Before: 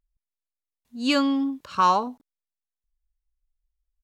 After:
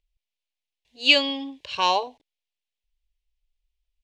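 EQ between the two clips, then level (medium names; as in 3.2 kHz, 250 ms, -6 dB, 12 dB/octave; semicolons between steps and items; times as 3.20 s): distance through air 61 m; peaking EQ 2.8 kHz +15 dB 1.7 oct; static phaser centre 540 Hz, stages 4; +1.0 dB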